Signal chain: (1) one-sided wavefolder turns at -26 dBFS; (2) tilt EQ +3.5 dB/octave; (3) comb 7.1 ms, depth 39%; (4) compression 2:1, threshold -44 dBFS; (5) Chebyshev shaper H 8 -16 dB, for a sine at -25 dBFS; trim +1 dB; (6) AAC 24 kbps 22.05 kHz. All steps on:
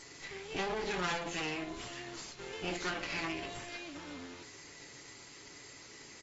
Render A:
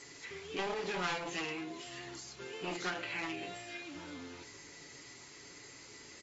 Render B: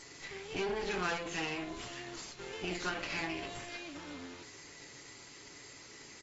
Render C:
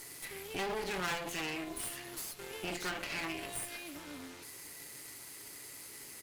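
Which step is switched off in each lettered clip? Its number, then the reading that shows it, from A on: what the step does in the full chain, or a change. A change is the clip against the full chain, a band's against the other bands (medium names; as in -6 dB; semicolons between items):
5, 125 Hz band -2.0 dB; 1, distortion -2 dB; 6, momentary loudness spread change -5 LU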